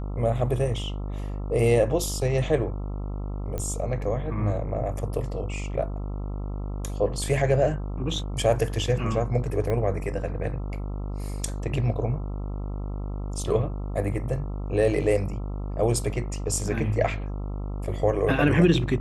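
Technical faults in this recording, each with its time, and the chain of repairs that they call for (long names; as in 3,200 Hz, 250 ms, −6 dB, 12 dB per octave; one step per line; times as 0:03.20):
mains buzz 50 Hz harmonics 27 −31 dBFS
0:03.58: click −18 dBFS
0:09.70: click −17 dBFS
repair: click removal
hum removal 50 Hz, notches 27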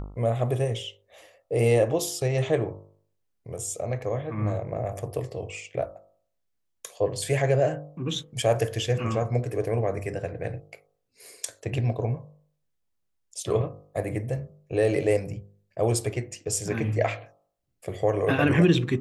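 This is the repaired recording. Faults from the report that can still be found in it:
0:09.70: click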